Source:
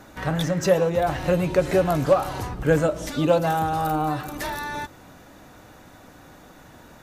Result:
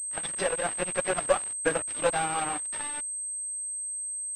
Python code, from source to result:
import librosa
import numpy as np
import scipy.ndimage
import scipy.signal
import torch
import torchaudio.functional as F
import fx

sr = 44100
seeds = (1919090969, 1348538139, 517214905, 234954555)

y = scipy.signal.sosfilt(scipy.signal.butter(2, 190.0, 'highpass', fs=sr, output='sos'), x)
y = fx.tilt_shelf(y, sr, db=-6.5, hz=870.0)
y = fx.stretch_vocoder_free(y, sr, factor=0.62)
y = fx.cheby_harmonics(y, sr, harmonics=(3, 5, 8), levels_db=(-25, -37, -31), full_scale_db=-5.5)
y = np.sign(y) * np.maximum(np.abs(y) - 10.0 ** (-31.0 / 20.0), 0.0)
y = fx.pwm(y, sr, carrier_hz=8300.0)
y = y * librosa.db_to_amplitude(3.5)